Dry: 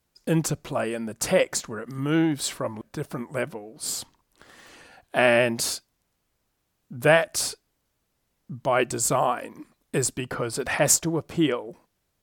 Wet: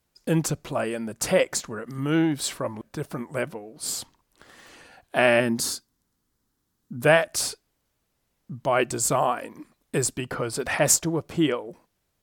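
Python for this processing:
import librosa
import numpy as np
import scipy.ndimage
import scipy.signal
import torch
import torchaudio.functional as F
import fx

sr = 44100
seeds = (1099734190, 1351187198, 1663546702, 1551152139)

y = fx.graphic_eq_15(x, sr, hz=(250, 630, 2500), db=(6, -9, -9), at=(5.4, 7.03))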